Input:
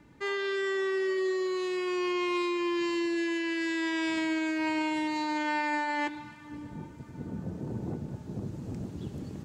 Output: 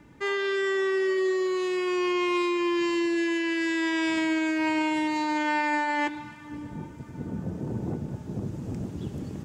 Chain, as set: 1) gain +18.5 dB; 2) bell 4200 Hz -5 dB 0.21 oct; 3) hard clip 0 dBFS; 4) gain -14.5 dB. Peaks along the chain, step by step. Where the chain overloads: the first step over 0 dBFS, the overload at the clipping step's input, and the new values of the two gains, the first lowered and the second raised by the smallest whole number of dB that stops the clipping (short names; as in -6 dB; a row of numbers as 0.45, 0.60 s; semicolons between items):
-3.5, -3.5, -3.5, -18.0 dBFS; no overload